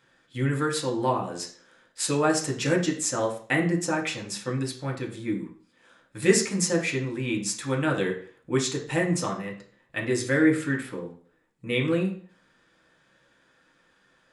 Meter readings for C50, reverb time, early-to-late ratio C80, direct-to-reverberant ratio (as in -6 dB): 9.5 dB, 0.50 s, 13.0 dB, -1.0 dB